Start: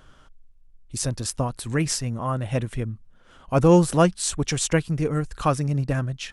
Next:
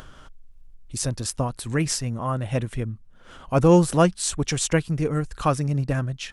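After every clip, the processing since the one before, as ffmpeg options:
-af "acompressor=mode=upward:threshold=-36dB:ratio=2.5"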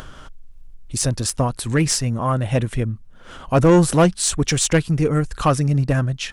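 -af "asoftclip=type=tanh:threshold=-14dB,volume=6.5dB"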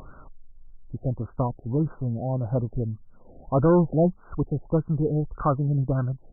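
-af "afftfilt=real='re*lt(b*sr/1024,770*pow(1600/770,0.5+0.5*sin(2*PI*1.7*pts/sr)))':imag='im*lt(b*sr/1024,770*pow(1600/770,0.5+0.5*sin(2*PI*1.7*pts/sr)))':win_size=1024:overlap=0.75,volume=-5.5dB"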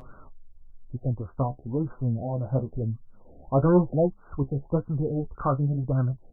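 -af "flanger=delay=7.9:depth=7.2:regen=40:speed=1:shape=sinusoidal,volume=2dB"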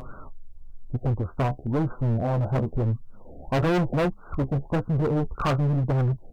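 -af "asoftclip=type=hard:threshold=-27.5dB,volume=7dB"

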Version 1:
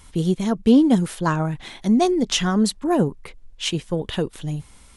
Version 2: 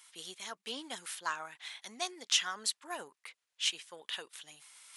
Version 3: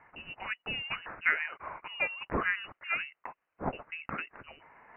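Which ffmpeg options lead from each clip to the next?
-af "areverse,acompressor=mode=upward:threshold=-38dB:ratio=2.5,areverse,highpass=1.5k,volume=-5.5dB"
-af "lowpass=f=2.6k:t=q:w=0.5098,lowpass=f=2.6k:t=q:w=0.6013,lowpass=f=2.6k:t=q:w=0.9,lowpass=f=2.6k:t=q:w=2.563,afreqshift=-3100,volume=8.5dB"

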